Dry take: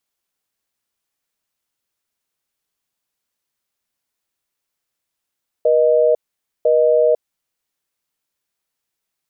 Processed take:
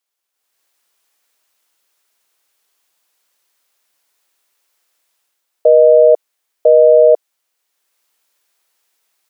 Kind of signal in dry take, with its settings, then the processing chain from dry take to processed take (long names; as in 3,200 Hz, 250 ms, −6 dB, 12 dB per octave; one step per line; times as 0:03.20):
call progress tone busy tone, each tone −13.5 dBFS 1.65 s
high-pass filter 420 Hz 12 dB per octave
automatic gain control gain up to 13.5 dB